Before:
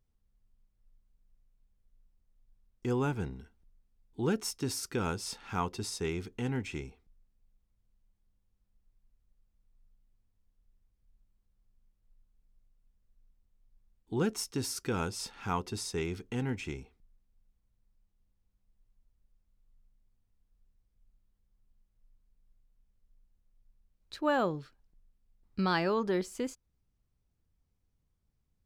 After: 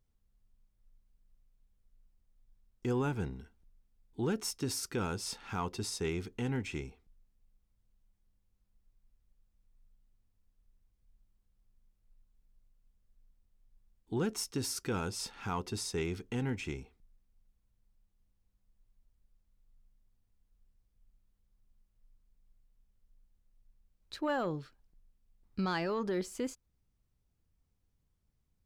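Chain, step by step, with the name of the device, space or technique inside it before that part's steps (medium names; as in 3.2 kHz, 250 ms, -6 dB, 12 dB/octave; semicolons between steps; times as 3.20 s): soft clipper into limiter (saturation -19 dBFS, distortion -25 dB; peak limiter -25.5 dBFS, peak gain reduction 5.5 dB)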